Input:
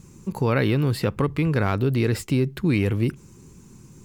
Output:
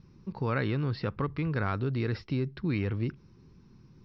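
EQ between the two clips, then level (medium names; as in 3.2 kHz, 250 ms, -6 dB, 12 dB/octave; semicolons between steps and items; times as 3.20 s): dynamic bell 1.3 kHz, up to +4 dB, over -37 dBFS, Q 1.5; rippled Chebyshev low-pass 5.6 kHz, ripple 3 dB; bass shelf 240 Hz +4.5 dB; -8.5 dB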